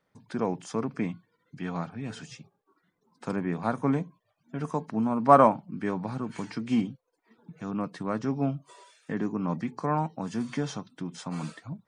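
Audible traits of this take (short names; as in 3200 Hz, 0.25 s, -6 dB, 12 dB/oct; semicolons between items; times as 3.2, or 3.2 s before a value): noise floor -77 dBFS; spectral tilt -5.0 dB/oct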